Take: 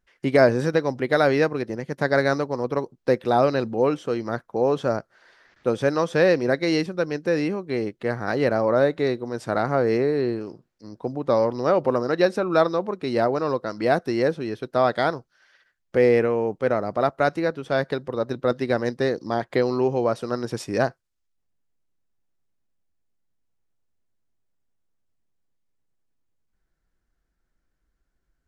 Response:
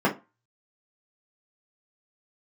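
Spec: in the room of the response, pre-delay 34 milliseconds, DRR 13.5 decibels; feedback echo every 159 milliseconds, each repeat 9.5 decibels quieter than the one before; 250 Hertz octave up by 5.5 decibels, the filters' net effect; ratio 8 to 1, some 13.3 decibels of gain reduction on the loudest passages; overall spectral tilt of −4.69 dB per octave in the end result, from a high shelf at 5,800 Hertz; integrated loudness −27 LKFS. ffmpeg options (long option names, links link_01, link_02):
-filter_complex "[0:a]equalizer=frequency=250:width_type=o:gain=7,highshelf=frequency=5800:gain=-8.5,acompressor=threshold=-24dB:ratio=8,aecho=1:1:159|318|477|636:0.335|0.111|0.0365|0.012,asplit=2[link_01][link_02];[1:a]atrim=start_sample=2205,adelay=34[link_03];[link_02][link_03]afir=irnorm=-1:irlink=0,volume=-29dB[link_04];[link_01][link_04]amix=inputs=2:normalize=0,volume=1.5dB"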